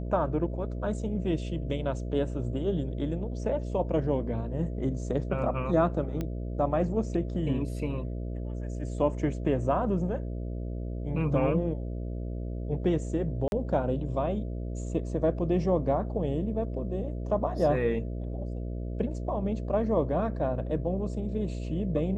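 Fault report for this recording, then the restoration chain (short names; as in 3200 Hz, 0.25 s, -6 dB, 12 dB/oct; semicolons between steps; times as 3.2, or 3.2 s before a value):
buzz 60 Hz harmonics 11 -34 dBFS
6.21 pop -20 dBFS
13.48–13.52 gap 41 ms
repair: de-click; de-hum 60 Hz, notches 11; interpolate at 13.48, 41 ms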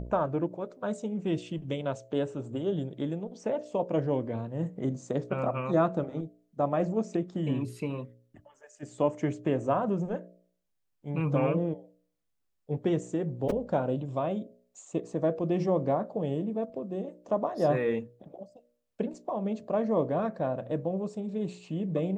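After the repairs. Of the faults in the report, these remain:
none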